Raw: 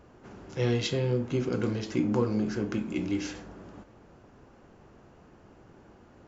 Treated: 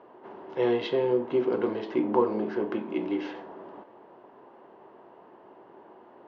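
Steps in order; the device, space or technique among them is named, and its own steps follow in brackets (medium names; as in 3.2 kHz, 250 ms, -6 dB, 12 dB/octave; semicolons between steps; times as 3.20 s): phone earpiece (cabinet simulation 340–3100 Hz, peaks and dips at 380 Hz +6 dB, 650 Hz +4 dB, 950 Hz +9 dB, 1.4 kHz -5 dB, 2.4 kHz -7 dB); trim +3 dB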